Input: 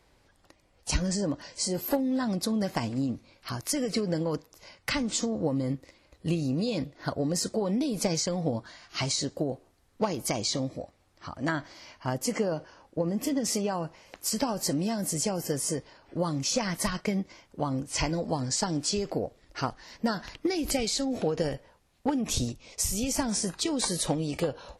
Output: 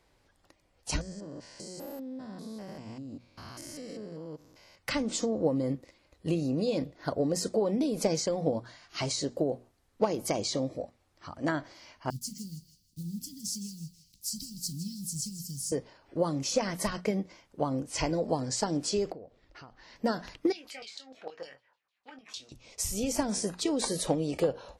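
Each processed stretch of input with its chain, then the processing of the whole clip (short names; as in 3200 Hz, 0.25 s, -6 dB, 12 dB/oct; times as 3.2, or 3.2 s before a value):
1.01–4.77 stepped spectrum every 0.2 s + compressor 12:1, threshold -35 dBFS
12.1–15.72 block floating point 5-bit + elliptic band-stop 180–4300 Hz, stop band 80 dB + thinning echo 0.161 s, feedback 37%, high-pass 700 Hz, level -12 dB
19.12–19.96 LPF 4500 Hz + compressor 5:1, threshold -43 dBFS
20.52–22.52 LFO band-pass saw down 6.6 Hz 990–4500 Hz + doubler 23 ms -8 dB
whole clip: notches 60/120/180/240 Hz; dynamic EQ 470 Hz, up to +7 dB, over -43 dBFS, Q 0.88; gain -4 dB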